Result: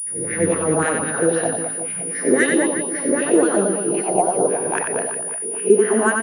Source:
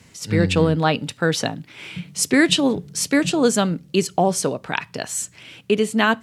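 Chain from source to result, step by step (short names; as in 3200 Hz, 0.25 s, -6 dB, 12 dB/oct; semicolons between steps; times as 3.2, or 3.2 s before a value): spectral swells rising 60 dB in 0.70 s; gate with hold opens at -27 dBFS; low shelf 430 Hz +11 dB; wah 3.8 Hz 370–1900 Hz, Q 3.3; air absorption 60 m; reverse bouncing-ball echo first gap 90 ms, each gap 1.3×, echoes 5; pulse-width modulation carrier 9700 Hz; gain +1.5 dB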